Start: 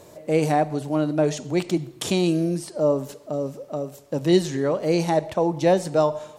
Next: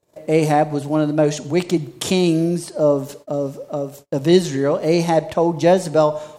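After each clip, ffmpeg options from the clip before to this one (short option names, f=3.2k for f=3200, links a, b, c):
-af "agate=range=-34dB:threshold=-44dB:ratio=16:detection=peak,volume=4.5dB"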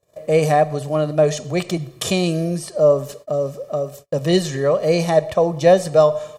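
-af "aecho=1:1:1.7:0.6,volume=-1dB"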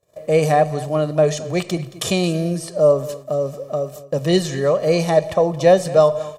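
-af "aecho=1:1:224:0.141"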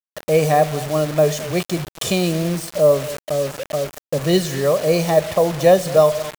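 -af "acrusher=bits=4:mix=0:aa=0.000001"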